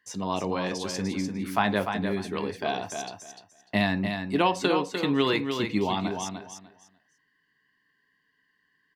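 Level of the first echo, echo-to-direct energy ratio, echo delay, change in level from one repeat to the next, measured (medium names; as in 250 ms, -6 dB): -6.5 dB, -6.5 dB, 298 ms, -14.0 dB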